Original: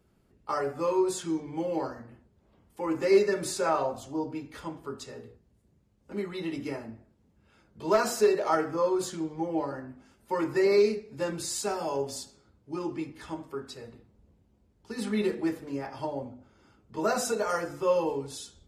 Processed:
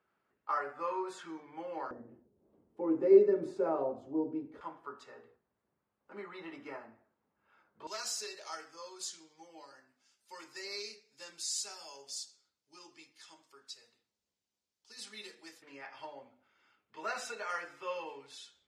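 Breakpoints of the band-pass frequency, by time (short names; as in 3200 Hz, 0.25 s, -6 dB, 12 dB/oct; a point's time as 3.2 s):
band-pass, Q 1.4
1400 Hz
from 1.91 s 370 Hz
from 4.61 s 1200 Hz
from 7.87 s 5500 Hz
from 15.62 s 2300 Hz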